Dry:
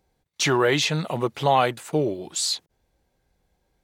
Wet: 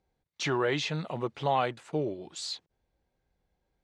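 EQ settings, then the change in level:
high-frequency loss of the air 89 metres
−7.5 dB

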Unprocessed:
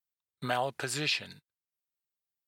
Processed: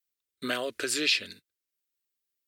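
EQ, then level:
phaser with its sweep stopped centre 340 Hz, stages 4
+6.0 dB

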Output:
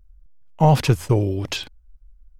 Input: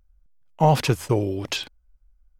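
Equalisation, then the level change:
low-shelf EQ 130 Hz +10.5 dB
0.0 dB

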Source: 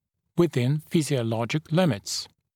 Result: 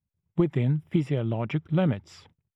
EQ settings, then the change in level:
Savitzky-Golay smoothing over 25 samples
low-shelf EQ 240 Hz +7.5 dB
−5.5 dB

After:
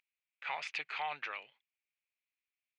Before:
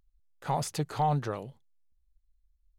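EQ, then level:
high-pass with resonance 2,400 Hz, resonance Q 5.7
head-to-tape spacing loss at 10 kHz 44 dB
+11.0 dB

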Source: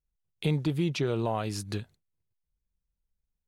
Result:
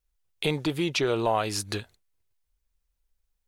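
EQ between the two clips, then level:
parametric band 150 Hz −13 dB 1.9 octaves
+8.0 dB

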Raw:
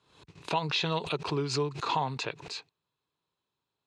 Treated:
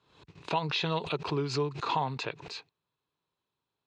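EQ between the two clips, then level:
high-frequency loss of the air 75 metres
0.0 dB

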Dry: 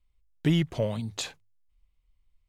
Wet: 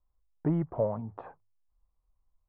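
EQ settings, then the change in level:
low-pass filter 1,200 Hz 24 dB per octave
parametric band 900 Hz +10.5 dB 2 octaves
−6.0 dB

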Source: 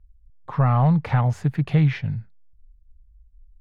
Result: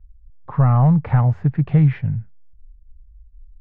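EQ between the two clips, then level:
low-pass filter 1,900 Hz 12 dB per octave
low-shelf EQ 170 Hz +7 dB
0.0 dB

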